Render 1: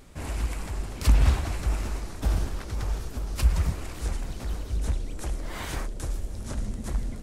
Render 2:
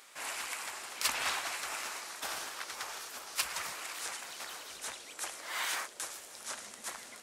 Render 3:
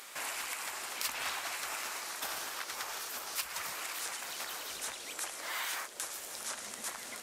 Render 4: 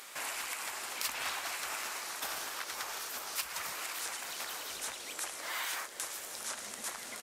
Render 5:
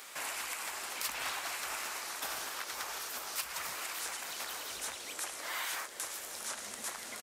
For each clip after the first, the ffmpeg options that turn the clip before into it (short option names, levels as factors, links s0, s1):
-af "highpass=1100,volume=1.58"
-af "equalizer=f=14000:t=o:w=0.27:g=9,acompressor=threshold=0.00501:ratio=2.5,volume=2.24"
-af "aecho=1:1:445:0.168"
-filter_complex "[0:a]acrossover=split=110|1500|7800[s0][s1][s2][s3];[s0]asplit=2[s4][s5];[s5]adelay=37,volume=0.708[s6];[s4][s6]amix=inputs=2:normalize=0[s7];[s2]asoftclip=type=tanh:threshold=0.0282[s8];[s7][s1][s8][s3]amix=inputs=4:normalize=0"